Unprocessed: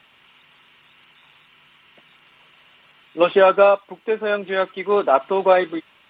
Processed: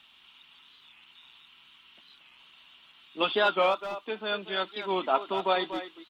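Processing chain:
octave-band graphic EQ 125/500/2,000/4,000 Hz −11/−11/−8/+11 dB
far-end echo of a speakerphone 240 ms, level −10 dB
wow of a warped record 45 rpm, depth 160 cents
level −4 dB

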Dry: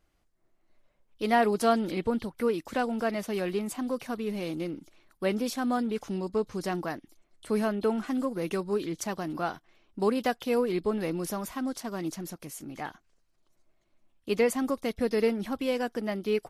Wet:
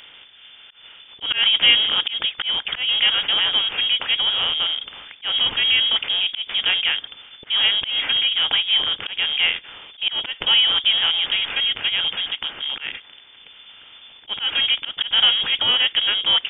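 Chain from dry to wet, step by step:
compressor on every frequency bin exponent 0.6
volume swells 155 ms
voice inversion scrambler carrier 3,500 Hz
level +7 dB

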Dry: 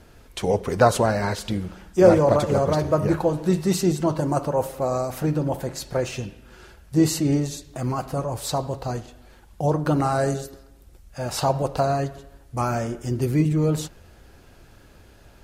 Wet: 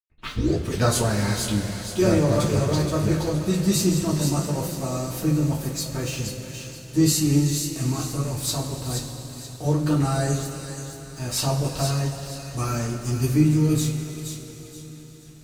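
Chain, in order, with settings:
turntable start at the beginning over 0.66 s
parametric band 740 Hz −14 dB 2.3 octaves
dead-zone distortion −48.5 dBFS
delay with a high-pass on its return 475 ms, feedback 30%, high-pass 2,100 Hz, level −6 dB
coupled-rooms reverb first 0.21 s, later 4.9 s, from −20 dB, DRR −5.5 dB

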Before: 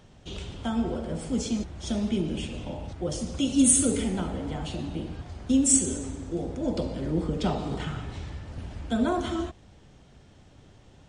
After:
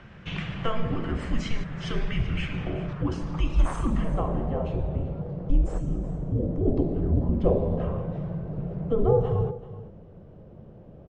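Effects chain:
high-shelf EQ 3,600 Hz +10.5 dB
in parallel at −1.5 dB: downward compressor, threshold −32 dBFS, peak gain reduction 23 dB
on the sum: hard clipping −12.5 dBFS, distortion −9 dB
low-pass filter sweep 2,000 Hz → 770 Hz, 0:02.28–0:05.32
frequency shifter −230 Hz
on a send: single-tap delay 382 ms −16 dB

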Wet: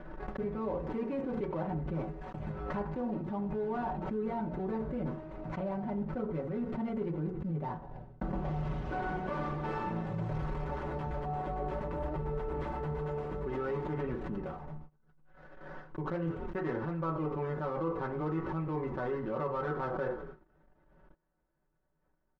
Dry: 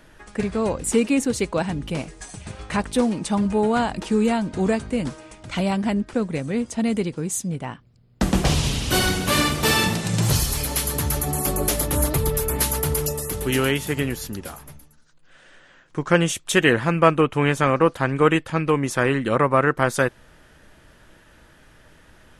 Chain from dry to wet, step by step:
gap after every zero crossing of 0.15 ms
on a send: echo with shifted repeats 91 ms, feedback 63%, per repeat −45 Hz, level −21 dB
on the sum: feedback delay network reverb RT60 0.32 s, low-frequency decay 0.8×, high-frequency decay 0.45×, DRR 1.5 dB
dynamic equaliser 180 Hz, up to −3 dB, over −29 dBFS, Q 0.99
low-pass filter 1,100 Hz 12 dB per octave
comb filter 5.3 ms, depth 92%
reversed playback
downward compressor 6 to 1, threshold −27 dBFS, peak gain reduction 17 dB
reversed playback
noise gate −41 dBFS, range −26 dB
background raised ahead of every attack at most 33 dB per second
level −6 dB

